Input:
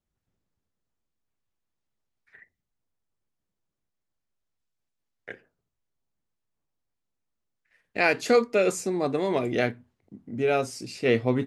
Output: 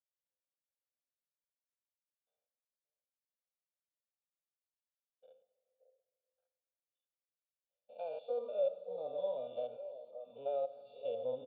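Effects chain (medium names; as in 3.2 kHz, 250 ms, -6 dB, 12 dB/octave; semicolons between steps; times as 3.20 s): spectrogram pixelated in time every 100 ms; waveshaping leveller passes 1; Chebyshev band-stop 1.1–3.3 kHz, order 3; differentiator; harmonic-percussive split harmonic +9 dB; bass shelf 400 Hz -4 dB; comb 1.4 ms, depth 96%; peak limiter -27.5 dBFS, peak gain reduction 10.5 dB; cascade formant filter e; repeats whose band climbs or falls 573 ms, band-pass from 510 Hz, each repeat 1.4 oct, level -8 dB; reverberation RT60 2.3 s, pre-delay 10 ms, DRR 14.5 dB; trim +10.5 dB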